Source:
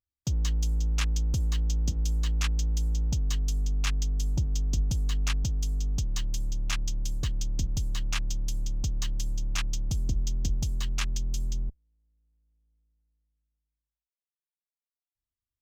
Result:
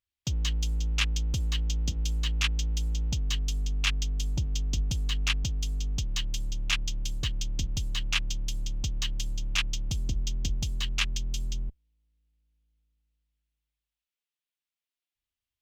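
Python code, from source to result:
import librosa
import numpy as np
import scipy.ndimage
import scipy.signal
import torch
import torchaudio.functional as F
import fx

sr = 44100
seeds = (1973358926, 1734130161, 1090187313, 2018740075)

y = fx.peak_eq(x, sr, hz=2900.0, db=11.0, octaves=1.3)
y = F.gain(torch.from_numpy(y), -2.0).numpy()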